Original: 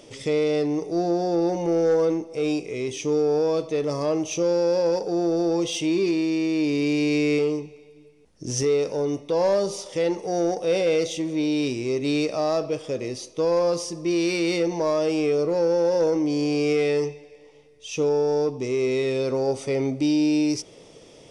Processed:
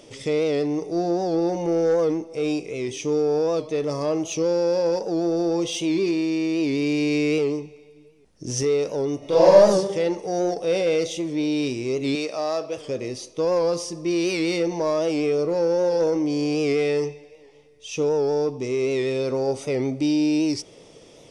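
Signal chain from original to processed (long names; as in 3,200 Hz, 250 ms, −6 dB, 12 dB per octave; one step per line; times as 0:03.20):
0:09.18–0:09.70: thrown reverb, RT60 0.81 s, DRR −7 dB
0:12.15–0:12.78: high-pass filter 470 Hz 6 dB per octave
wow of a warped record 78 rpm, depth 100 cents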